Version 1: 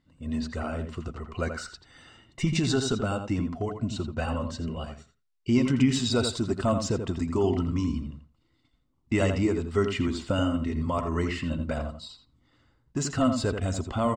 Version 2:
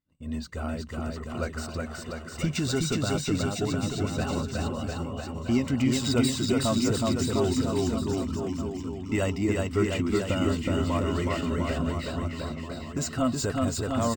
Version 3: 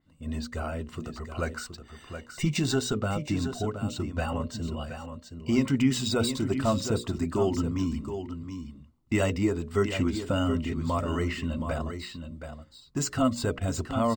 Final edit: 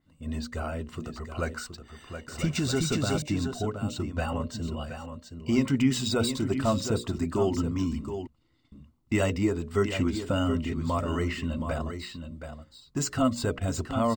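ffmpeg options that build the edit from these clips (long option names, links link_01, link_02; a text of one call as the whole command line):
ffmpeg -i take0.wav -i take1.wav -i take2.wav -filter_complex "[2:a]asplit=3[link_01][link_02][link_03];[link_01]atrim=end=2.282[link_04];[1:a]atrim=start=2.278:end=3.222[link_05];[link_02]atrim=start=3.218:end=8.272[link_06];[0:a]atrim=start=8.268:end=8.722[link_07];[link_03]atrim=start=8.718[link_08];[link_04][link_05]acrossfade=duration=0.004:curve1=hsin:curve2=hsin[link_09];[link_09][link_06]acrossfade=duration=0.004:curve1=hsin:curve2=hsin[link_10];[link_10][link_07]acrossfade=duration=0.004:curve1=hsin:curve2=hsin[link_11];[link_11][link_08]acrossfade=duration=0.004:curve1=hsin:curve2=hsin" out.wav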